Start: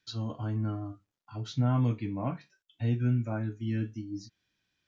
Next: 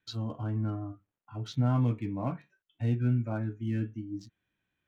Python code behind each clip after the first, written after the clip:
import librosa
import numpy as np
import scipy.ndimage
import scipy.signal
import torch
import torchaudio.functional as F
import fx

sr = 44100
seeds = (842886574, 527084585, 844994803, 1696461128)

y = fx.wiener(x, sr, points=9)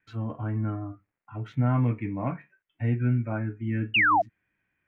y = fx.high_shelf_res(x, sr, hz=3100.0, db=-13.0, q=3.0)
y = fx.spec_paint(y, sr, seeds[0], shape='fall', start_s=3.94, length_s=0.28, low_hz=630.0, high_hz=3000.0, level_db=-23.0)
y = y * librosa.db_to_amplitude(2.5)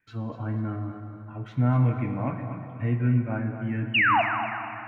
y = fx.echo_feedback(x, sr, ms=245, feedback_pct=33, wet_db=-10.0)
y = fx.rev_plate(y, sr, seeds[1], rt60_s=3.5, hf_ratio=0.65, predelay_ms=0, drr_db=6.5)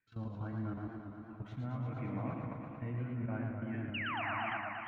y = fx.level_steps(x, sr, step_db=16)
y = fx.echo_warbled(y, sr, ms=115, feedback_pct=79, rate_hz=2.8, cents=134, wet_db=-5.5)
y = y * librosa.db_to_amplitude(-7.0)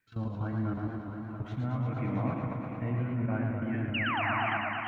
y = x + 10.0 ** (-10.5 / 20.0) * np.pad(x, (int(671 * sr / 1000.0), 0))[:len(x)]
y = y * librosa.db_to_amplitude(7.0)